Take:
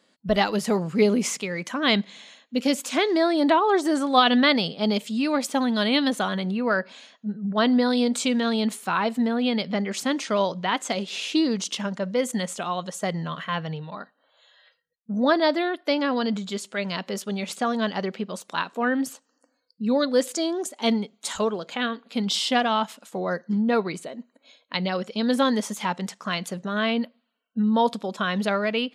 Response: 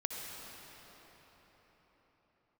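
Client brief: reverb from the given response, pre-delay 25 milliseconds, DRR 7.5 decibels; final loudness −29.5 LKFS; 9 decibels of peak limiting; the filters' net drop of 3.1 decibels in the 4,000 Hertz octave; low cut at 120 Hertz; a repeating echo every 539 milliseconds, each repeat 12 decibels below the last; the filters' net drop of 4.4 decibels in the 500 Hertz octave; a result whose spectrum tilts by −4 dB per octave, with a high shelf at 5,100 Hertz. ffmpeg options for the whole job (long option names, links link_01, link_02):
-filter_complex "[0:a]highpass=120,equalizer=frequency=500:width_type=o:gain=-5.5,equalizer=frequency=4000:width_type=o:gain=-6,highshelf=frequency=5100:gain=5,alimiter=limit=-16.5dB:level=0:latency=1,aecho=1:1:539|1078|1617:0.251|0.0628|0.0157,asplit=2[link_01][link_02];[1:a]atrim=start_sample=2205,adelay=25[link_03];[link_02][link_03]afir=irnorm=-1:irlink=0,volume=-10dB[link_04];[link_01][link_04]amix=inputs=2:normalize=0,volume=-2.5dB"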